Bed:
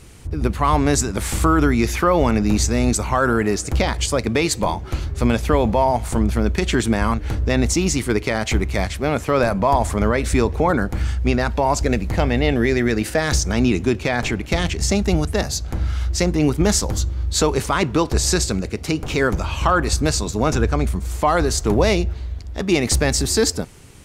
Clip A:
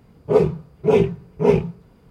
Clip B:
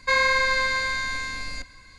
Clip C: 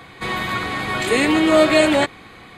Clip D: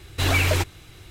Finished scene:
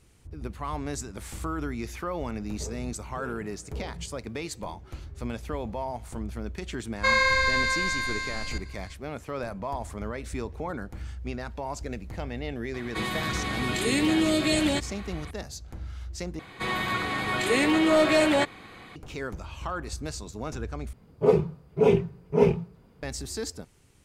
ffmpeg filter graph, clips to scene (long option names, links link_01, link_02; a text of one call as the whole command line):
ffmpeg -i bed.wav -i cue0.wav -i cue1.wav -i cue2.wav -filter_complex "[1:a]asplit=2[link_01][link_02];[3:a]asplit=2[link_03][link_04];[0:a]volume=-16dB[link_05];[link_01]acompressor=threshold=-32dB:ratio=6:attack=3.2:release=140:knee=1:detection=peak[link_06];[link_03]acrossover=split=330|3000[link_07][link_08][link_09];[link_08]acompressor=threshold=-28dB:ratio=6:attack=3.2:release=140:knee=2.83:detection=peak[link_10];[link_07][link_10][link_09]amix=inputs=3:normalize=0[link_11];[link_04]asoftclip=type=tanh:threshold=-9.5dB[link_12];[link_05]asplit=3[link_13][link_14][link_15];[link_13]atrim=end=16.394[link_16];[link_12]atrim=end=2.57,asetpts=PTS-STARTPTS,volume=-4.5dB[link_17];[link_14]atrim=start=18.956:end=20.934[link_18];[link_02]atrim=end=2.1,asetpts=PTS-STARTPTS,volume=-4.5dB[link_19];[link_15]atrim=start=23.026[link_20];[link_06]atrim=end=2.1,asetpts=PTS-STARTPTS,volume=-8dB,afade=type=in:duration=0.004:curve=hsin,afade=type=out:start_time=2.096:duration=0.004:curve=hsin,adelay=2320[link_21];[2:a]atrim=end=1.98,asetpts=PTS-STARTPTS,volume=-1.5dB,afade=type=in:duration=0.004:curve=hsin,afade=type=out:start_time=1.976:duration=0.004:curve=hsin,adelay=6960[link_22];[link_11]atrim=end=2.57,asetpts=PTS-STARTPTS,volume=-3dB,afade=type=in:duration=0.004:curve=hsin,afade=type=out:start_time=2.566:duration=0.004:curve=hsin,adelay=12740[link_23];[link_16][link_17]acrossfade=duration=0.004:curve1=hsin:curve2=hsin[link_24];[link_24][link_18]acrossfade=duration=0.004:curve1=hsin:curve2=hsin[link_25];[link_25][link_19]acrossfade=duration=0.004:curve1=hsin:curve2=hsin[link_26];[link_26][link_20]acrossfade=duration=0.004:curve1=hsin:curve2=hsin[link_27];[link_27][link_21][link_22][link_23]amix=inputs=4:normalize=0" out.wav